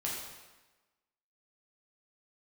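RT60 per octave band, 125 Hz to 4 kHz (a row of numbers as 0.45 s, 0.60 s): 1.1 s, 1.1 s, 1.2 s, 1.2 s, 1.1 s, 1.0 s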